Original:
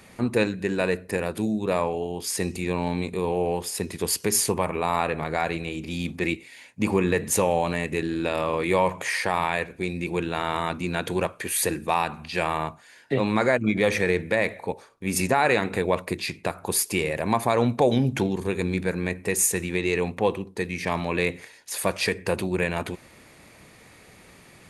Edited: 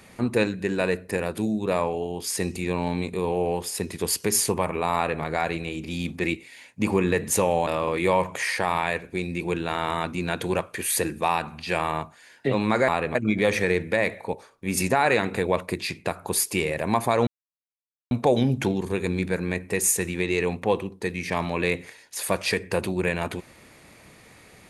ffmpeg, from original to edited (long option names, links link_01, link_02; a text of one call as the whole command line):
ffmpeg -i in.wav -filter_complex "[0:a]asplit=5[link_01][link_02][link_03][link_04][link_05];[link_01]atrim=end=7.672[link_06];[link_02]atrim=start=8.328:end=13.542[link_07];[link_03]atrim=start=4.948:end=5.222[link_08];[link_04]atrim=start=13.538:end=17.66,asetpts=PTS-STARTPTS,afade=type=out:start_time=4.118:duration=0.004:curve=hsin,apad=pad_dur=0.84[link_09];[link_05]atrim=start=17.66,asetpts=PTS-STARTPTS,afade=type=in:duration=0.004:curve=hsin[link_10];[link_06][link_07]acrossfade=duration=0.004:curve1=hsin:curve2=hsin[link_11];[link_11][link_08]acrossfade=duration=0.004:curve1=hsin:curve2=hsin[link_12];[link_09][link_10]concat=n=2:v=0:a=1[link_13];[link_12][link_13]acrossfade=duration=0.004:curve1=hsin:curve2=hsin" out.wav